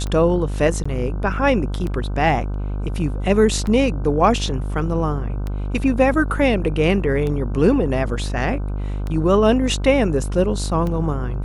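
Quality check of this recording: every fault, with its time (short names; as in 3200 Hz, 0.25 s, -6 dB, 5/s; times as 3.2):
buzz 50 Hz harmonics 31 -24 dBFS
tick 33 1/3 rpm -15 dBFS
0.84–0.85 gap 15 ms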